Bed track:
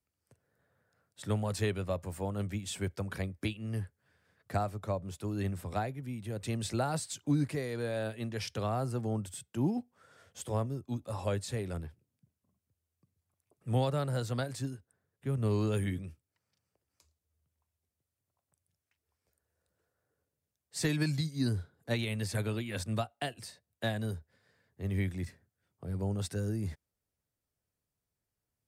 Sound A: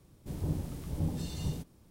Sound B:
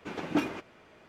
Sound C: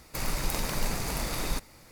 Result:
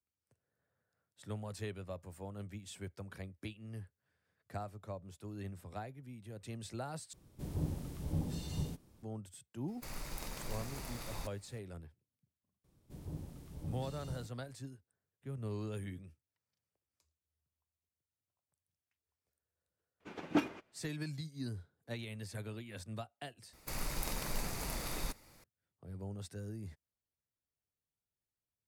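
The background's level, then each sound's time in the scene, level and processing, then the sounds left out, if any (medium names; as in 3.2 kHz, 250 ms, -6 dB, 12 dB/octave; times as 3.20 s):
bed track -10.5 dB
7.13 s: replace with A -3.5 dB
9.68 s: add C -13.5 dB
12.64 s: add A -11 dB
20.00 s: add B -2.5 dB + upward expansion, over -52 dBFS
23.53 s: replace with C -8.5 dB + peaking EQ 12 kHz +2.5 dB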